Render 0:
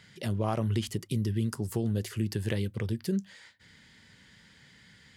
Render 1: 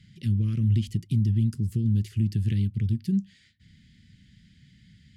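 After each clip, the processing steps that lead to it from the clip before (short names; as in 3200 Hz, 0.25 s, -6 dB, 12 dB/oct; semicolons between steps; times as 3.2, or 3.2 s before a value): Chebyshev band-stop 210–2700 Hz, order 2; tilt -2.5 dB/oct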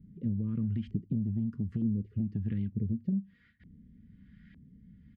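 comb 4.2 ms, depth 48%; compressor 5:1, threshold -29 dBFS, peak gain reduction 10 dB; LFO low-pass saw up 1.1 Hz 350–1800 Hz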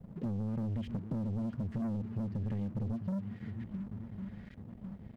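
swung echo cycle 1.101 s, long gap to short 1.5:1, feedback 39%, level -16 dB; sample leveller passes 3; compressor, threshold -27 dBFS, peak gain reduction 5 dB; gain -6 dB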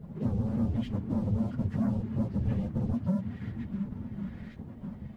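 phase scrambler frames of 50 ms; gain +5.5 dB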